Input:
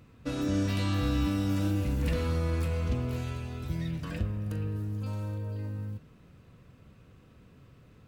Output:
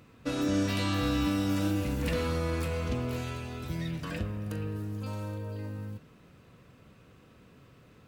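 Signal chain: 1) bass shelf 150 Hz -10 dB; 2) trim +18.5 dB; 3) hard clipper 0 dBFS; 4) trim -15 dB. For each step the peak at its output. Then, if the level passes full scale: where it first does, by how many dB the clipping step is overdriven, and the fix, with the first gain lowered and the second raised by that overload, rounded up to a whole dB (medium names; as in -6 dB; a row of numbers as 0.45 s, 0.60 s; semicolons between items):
-21.0 dBFS, -2.5 dBFS, -2.5 dBFS, -17.5 dBFS; nothing clips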